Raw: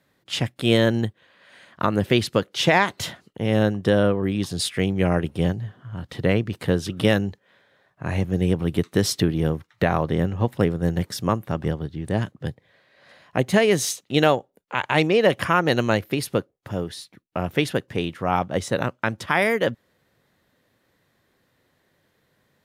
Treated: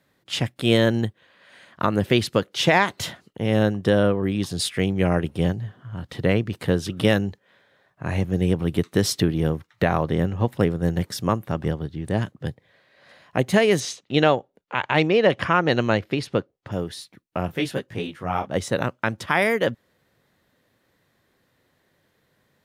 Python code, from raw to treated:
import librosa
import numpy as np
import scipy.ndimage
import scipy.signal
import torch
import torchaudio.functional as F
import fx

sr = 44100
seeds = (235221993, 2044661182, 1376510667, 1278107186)

y = fx.lowpass(x, sr, hz=5100.0, slope=12, at=(13.8, 16.72))
y = fx.detune_double(y, sr, cents=27, at=(17.48, 18.49), fade=0.02)